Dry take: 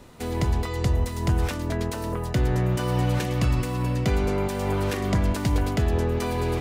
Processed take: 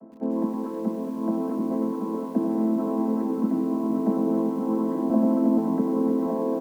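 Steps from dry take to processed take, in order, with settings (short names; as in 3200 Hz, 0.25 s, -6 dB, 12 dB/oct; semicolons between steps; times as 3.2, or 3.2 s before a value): chord vocoder minor triad, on A3; LPF 1100 Hz 24 dB/oct; low shelf 330 Hz +5 dB; 5.1–5.58 steep high-pass 210 Hz 96 dB/oct; echo 1.161 s -5 dB; lo-fi delay 99 ms, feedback 80%, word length 8-bit, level -11 dB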